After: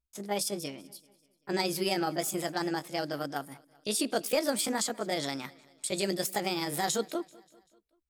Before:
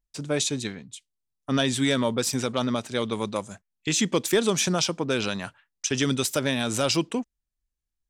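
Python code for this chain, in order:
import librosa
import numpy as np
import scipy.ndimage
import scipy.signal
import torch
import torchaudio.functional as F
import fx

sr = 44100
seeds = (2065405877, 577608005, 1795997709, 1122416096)

y = fx.pitch_heads(x, sr, semitones=5.5)
y = fx.echo_feedback(y, sr, ms=194, feedback_pct=54, wet_db=-23.5)
y = y * 10.0 ** (-5.0 / 20.0)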